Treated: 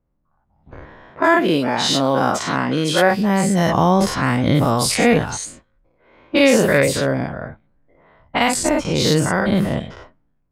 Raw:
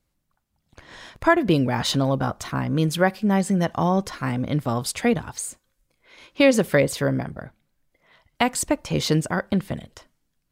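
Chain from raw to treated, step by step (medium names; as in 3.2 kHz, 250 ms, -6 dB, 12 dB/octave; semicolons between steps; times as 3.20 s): every event in the spectrogram widened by 120 ms; level rider gain up to 10.5 dB; 1.10–3.11 s: high-pass 200 Hz 12 dB/octave; level-controlled noise filter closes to 960 Hz, open at -12 dBFS; trim -1 dB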